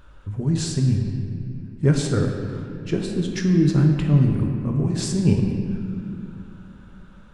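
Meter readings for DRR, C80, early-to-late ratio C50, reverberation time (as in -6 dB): 1.5 dB, 4.5 dB, 3.5 dB, 2.5 s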